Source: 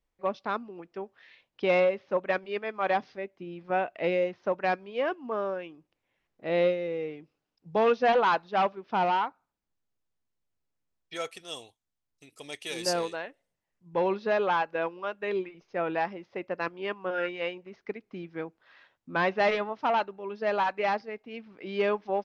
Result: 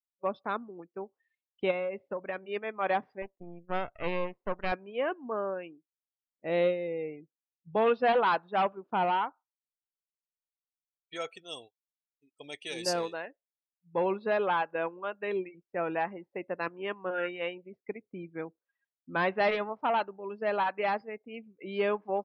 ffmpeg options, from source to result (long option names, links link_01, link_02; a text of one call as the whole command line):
ffmpeg -i in.wav -filter_complex "[0:a]asplit=3[link_01][link_02][link_03];[link_01]afade=type=out:start_time=1.7:duration=0.02[link_04];[link_02]acompressor=threshold=-28dB:ratio=6:attack=3.2:release=140:knee=1:detection=peak,afade=type=in:start_time=1.7:duration=0.02,afade=type=out:start_time=2.43:duration=0.02[link_05];[link_03]afade=type=in:start_time=2.43:duration=0.02[link_06];[link_04][link_05][link_06]amix=inputs=3:normalize=0,asettb=1/sr,asplit=3[link_07][link_08][link_09];[link_07]atrim=end=3.224[link_10];[link_08]atrim=start=3.22:end=4.72,asetpts=PTS-STARTPTS,afade=type=in:duration=0.004:curve=qsin,afade=type=out:start_time=1.496:duration=0.004:curve=qsin,aeval=exprs='max(val(0),0)':channel_layout=same[link_11];[link_09]atrim=start=4.716[link_12];[link_10][link_11]acrossfade=duration=0.004:curve1=hsin:curve2=qsin[link_13];[link_13][link_12]acrossfade=duration=0.004:curve1=qsin:curve2=hsin,agate=range=-6dB:threshold=-49dB:ratio=16:detection=peak,afftdn=noise_reduction=30:noise_floor=-47,volume=-2dB" out.wav